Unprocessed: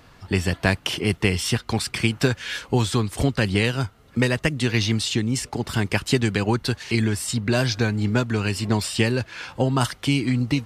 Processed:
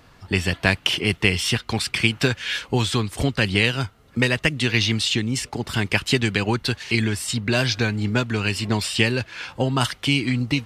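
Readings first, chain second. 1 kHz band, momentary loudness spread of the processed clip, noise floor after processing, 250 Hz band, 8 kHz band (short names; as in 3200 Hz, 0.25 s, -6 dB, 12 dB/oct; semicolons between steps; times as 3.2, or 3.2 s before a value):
0.0 dB, 6 LU, -52 dBFS, -1.0 dB, 0.0 dB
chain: dynamic EQ 2800 Hz, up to +7 dB, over -39 dBFS, Q 0.9; gain -1 dB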